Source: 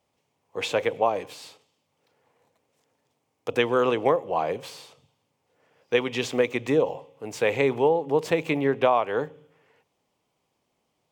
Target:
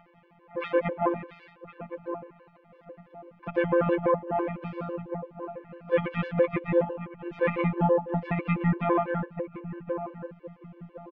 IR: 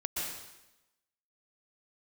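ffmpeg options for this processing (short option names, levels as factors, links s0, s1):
-filter_complex "[0:a]asplit=4[s0][s1][s2][s3];[s1]asetrate=22050,aresample=44100,atempo=2,volume=0.631[s4];[s2]asetrate=66075,aresample=44100,atempo=0.66742,volume=0.141[s5];[s3]asetrate=88200,aresample=44100,atempo=0.5,volume=0.126[s6];[s0][s4][s5][s6]amix=inputs=4:normalize=0,acompressor=mode=upward:threshold=0.0112:ratio=2.5,afftfilt=real='hypot(re,im)*cos(PI*b)':imag='0':win_size=1024:overlap=0.75,lowpass=f=2300:w=0.5412,lowpass=f=2300:w=1.3066,asplit=2[s7][s8];[s8]adelay=1063,lowpass=f=990:p=1,volume=0.316,asplit=2[s9][s10];[s10]adelay=1063,lowpass=f=990:p=1,volume=0.36,asplit=2[s11][s12];[s12]adelay=1063,lowpass=f=990:p=1,volume=0.36,asplit=2[s13][s14];[s14]adelay=1063,lowpass=f=990:p=1,volume=0.36[s15];[s9][s11][s13][s15]amix=inputs=4:normalize=0[s16];[s7][s16]amix=inputs=2:normalize=0,alimiter=level_in=3.55:limit=0.891:release=50:level=0:latency=1,afftfilt=real='re*gt(sin(2*PI*6*pts/sr)*(1-2*mod(floor(b*sr/1024/300),2)),0)':imag='im*gt(sin(2*PI*6*pts/sr)*(1-2*mod(floor(b*sr/1024/300),2)),0)':win_size=1024:overlap=0.75,volume=0.447"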